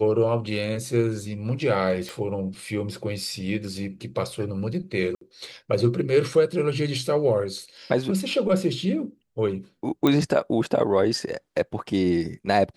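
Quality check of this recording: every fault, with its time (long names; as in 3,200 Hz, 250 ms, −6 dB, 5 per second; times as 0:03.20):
0:02.09: click
0:05.15–0:05.21: drop-out 63 ms
0:10.07: click −9 dBFS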